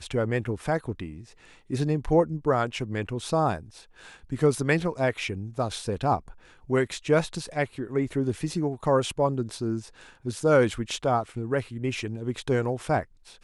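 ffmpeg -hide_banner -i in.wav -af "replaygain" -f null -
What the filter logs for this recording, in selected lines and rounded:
track_gain = +6.7 dB
track_peak = 0.264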